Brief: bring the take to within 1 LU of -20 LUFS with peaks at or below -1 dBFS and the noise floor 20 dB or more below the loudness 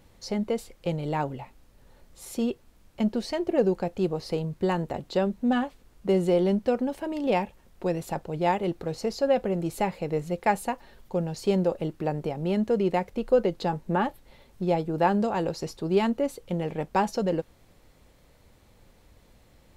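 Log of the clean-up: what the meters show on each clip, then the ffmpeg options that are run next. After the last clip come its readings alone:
loudness -27.5 LUFS; peak -10.5 dBFS; loudness target -20.0 LUFS
-> -af "volume=7.5dB"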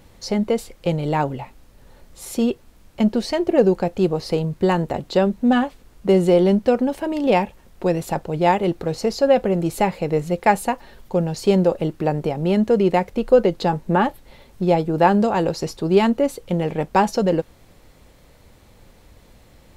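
loudness -20.0 LUFS; peak -3.0 dBFS; noise floor -51 dBFS

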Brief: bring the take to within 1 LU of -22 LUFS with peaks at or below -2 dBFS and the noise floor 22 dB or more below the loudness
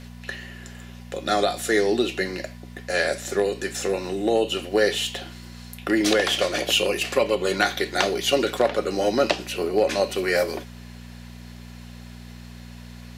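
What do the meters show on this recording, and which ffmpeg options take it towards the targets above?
hum 60 Hz; harmonics up to 240 Hz; hum level -38 dBFS; loudness -23.0 LUFS; peak -3.5 dBFS; loudness target -22.0 LUFS
-> -af "bandreject=f=60:t=h:w=4,bandreject=f=120:t=h:w=4,bandreject=f=180:t=h:w=4,bandreject=f=240:t=h:w=4"
-af "volume=1dB"

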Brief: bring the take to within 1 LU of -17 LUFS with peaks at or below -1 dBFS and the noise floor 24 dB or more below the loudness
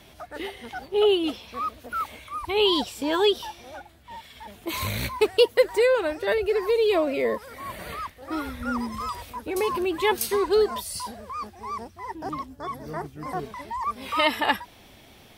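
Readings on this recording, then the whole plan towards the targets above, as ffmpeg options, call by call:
loudness -26.0 LUFS; peak -6.0 dBFS; loudness target -17.0 LUFS
-> -af "volume=9dB,alimiter=limit=-1dB:level=0:latency=1"

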